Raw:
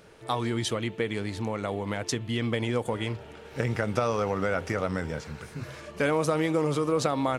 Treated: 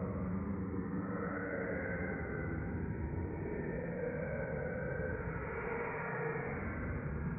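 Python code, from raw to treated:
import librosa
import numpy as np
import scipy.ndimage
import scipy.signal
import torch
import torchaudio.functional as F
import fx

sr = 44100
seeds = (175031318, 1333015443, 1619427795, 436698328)

p1 = scipy.signal.sosfilt(scipy.signal.butter(16, 2300.0, 'lowpass', fs=sr, output='sos'), x)
p2 = fx.level_steps(p1, sr, step_db=24)
p3 = p2 + fx.echo_filtered(p2, sr, ms=226, feedback_pct=78, hz=1200.0, wet_db=-23.5, dry=0)
p4 = fx.paulstretch(p3, sr, seeds[0], factor=17.0, window_s=0.05, from_s=4.89)
y = F.gain(torch.from_numpy(p4), 9.5).numpy()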